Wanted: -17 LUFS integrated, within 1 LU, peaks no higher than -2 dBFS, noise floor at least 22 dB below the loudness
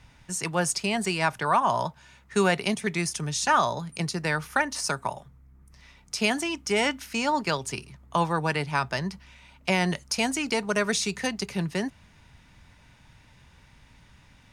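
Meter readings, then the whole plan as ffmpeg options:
loudness -27.0 LUFS; peak -10.0 dBFS; loudness target -17.0 LUFS
-> -af "volume=10dB,alimiter=limit=-2dB:level=0:latency=1"

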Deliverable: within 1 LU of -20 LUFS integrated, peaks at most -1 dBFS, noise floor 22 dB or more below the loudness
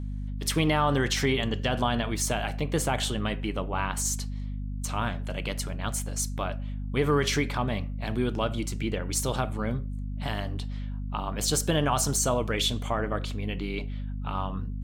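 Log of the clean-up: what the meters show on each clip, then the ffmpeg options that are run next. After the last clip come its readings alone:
hum 50 Hz; harmonics up to 250 Hz; hum level -31 dBFS; loudness -29.0 LUFS; peak -12.0 dBFS; loudness target -20.0 LUFS
-> -af "bandreject=f=50:t=h:w=6,bandreject=f=100:t=h:w=6,bandreject=f=150:t=h:w=6,bandreject=f=200:t=h:w=6,bandreject=f=250:t=h:w=6"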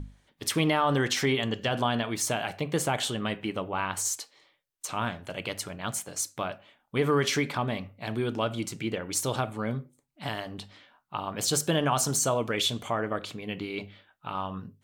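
hum none; loudness -29.5 LUFS; peak -12.5 dBFS; loudness target -20.0 LUFS
-> -af "volume=9.5dB"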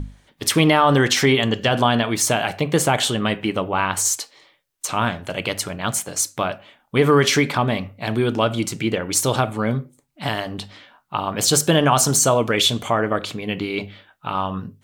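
loudness -20.0 LUFS; peak -3.0 dBFS; noise floor -62 dBFS

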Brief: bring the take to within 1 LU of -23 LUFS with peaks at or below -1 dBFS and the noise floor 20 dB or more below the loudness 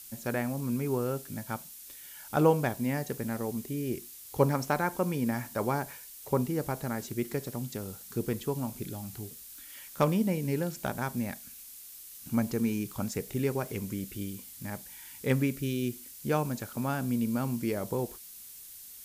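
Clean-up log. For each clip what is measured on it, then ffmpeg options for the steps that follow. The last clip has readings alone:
noise floor -48 dBFS; noise floor target -52 dBFS; loudness -32.0 LUFS; peak -10.5 dBFS; loudness target -23.0 LUFS
-> -af "afftdn=nr=6:nf=-48"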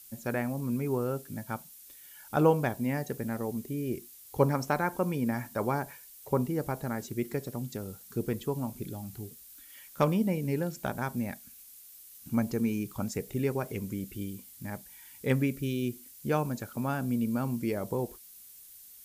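noise floor -52 dBFS; loudness -32.0 LUFS; peak -10.5 dBFS; loudness target -23.0 LUFS
-> -af "volume=9dB"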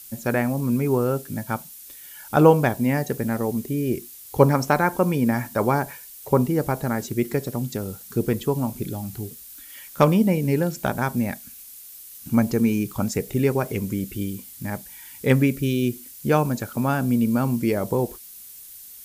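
loudness -23.0 LUFS; peak -1.5 dBFS; noise floor -43 dBFS

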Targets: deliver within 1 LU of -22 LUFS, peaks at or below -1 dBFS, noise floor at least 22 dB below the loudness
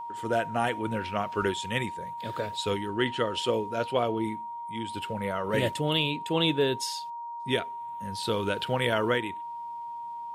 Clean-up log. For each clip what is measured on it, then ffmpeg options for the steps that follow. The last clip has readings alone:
steady tone 940 Hz; tone level -35 dBFS; loudness -29.5 LUFS; peak -12.5 dBFS; loudness target -22.0 LUFS
-> -af "bandreject=f=940:w=30"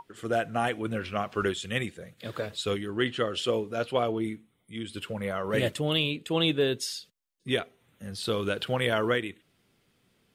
steady tone none; loudness -29.5 LUFS; peak -12.5 dBFS; loudness target -22.0 LUFS
-> -af "volume=7.5dB"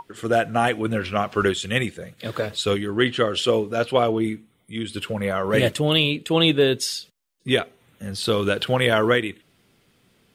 loudness -22.0 LUFS; peak -5.0 dBFS; noise floor -63 dBFS

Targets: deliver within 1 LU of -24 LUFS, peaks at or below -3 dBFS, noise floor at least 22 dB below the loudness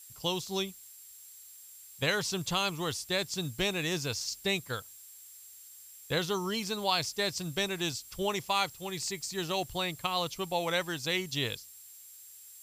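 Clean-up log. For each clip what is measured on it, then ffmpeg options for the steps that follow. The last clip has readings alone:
steady tone 7500 Hz; tone level -54 dBFS; noise floor -52 dBFS; noise floor target -54 dBFS; loudness -32.0 LUFS; peak -13.5 dBFS; loudness target -24.0 LUFS
-> -af "bandreject=f=7.5k:w=30"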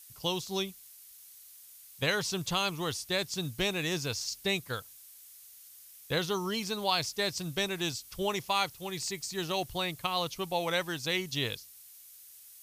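steady tone none; noise floor -53 dBFS; noise floor target -54 dBFS
-> -af "afftdn=nr=6:nf=-53"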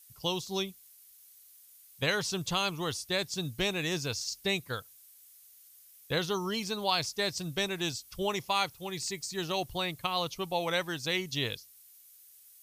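noise floor -57 dBFS; loudness -32.5 LUFS; peak -13.5 dBFS; loudness target -24.0 LUFS
-> -af "volume=8.5dB"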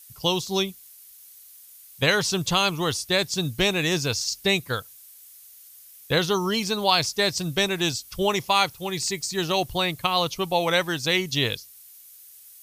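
loudness -24.0 LUFS; peak -5.0 dBFS; noise floor -49 dBFS

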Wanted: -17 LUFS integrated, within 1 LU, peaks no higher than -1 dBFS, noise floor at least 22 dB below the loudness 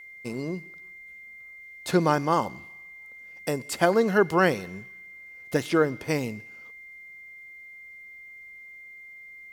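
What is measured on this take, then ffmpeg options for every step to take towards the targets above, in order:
steady tone 2100 Hz; tone level -43 dBFS; loudness -25.5 LUFS; peak -6.0 dBFS; loudness target -17.0 LUFS
-> -af "bandreject=f=2.1k:w=30"
-af "volume=8.5dB,alimiter=limit=-1dB:level=0:latency=1"

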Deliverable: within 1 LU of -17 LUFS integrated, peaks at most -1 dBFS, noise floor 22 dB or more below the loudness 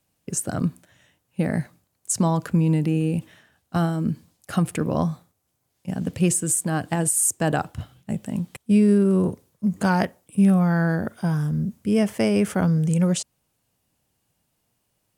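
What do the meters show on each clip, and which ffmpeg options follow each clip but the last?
loudness -23.0 LUFS; peak -7.5 dBFS; loudness target -17.0 LUFS
-> -af "volume=6dB"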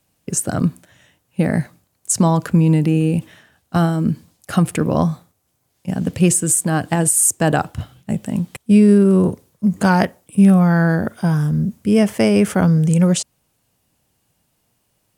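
loudness -17.0 LUFS; peak -1.5 dBFS; noise floor -67 dBFS

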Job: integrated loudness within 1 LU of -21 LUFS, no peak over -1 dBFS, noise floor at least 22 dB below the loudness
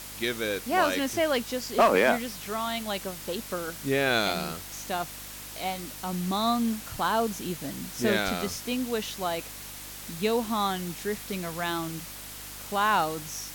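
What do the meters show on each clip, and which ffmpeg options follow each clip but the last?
hum 50 Hz; harmonics up to 300 Hz; hum level -49 dBFS; noise floor -42 dBFS; noise floor target -51 dBFS; loudness -28.5 LUFS; peak -12.0 dBFS; loudness target -21.0 LUFS
-> -af "bandreject=f=50:t=h:w=4,bandreject=f=100:t=h:w=4,bandreject=f=150:t=h:w=4,bandreject=f=200:t=h:w=4,bandreject=f=250:t=h:w=4,bandreject=f=300:t=h:w=4"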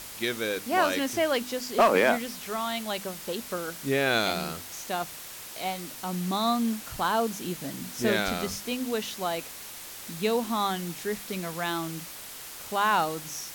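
hum none; noise floor -42 dBFS; noise floor target -51 dBFS
-> -af "afftdn=nr=9:nf=-42"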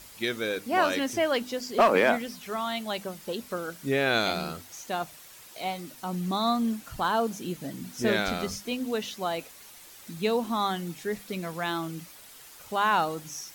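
noise floor -49 dBFS; noise floor target -51 dBFS
-> -af "afftdn=nr=6:nf=-49"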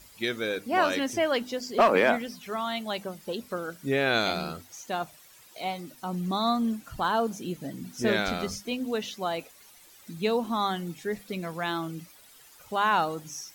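noise floor -54 dBFS; loudness -29.0 LUFS; peak -12.0 dBFS; loudness target -21.0 LUFS
-> -af "volume=8dB"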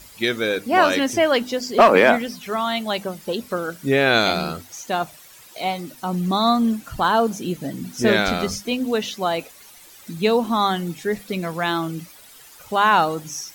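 loudness -21.0 LUFS; peak -4.0 dBFS; noise floor -46 dBFS

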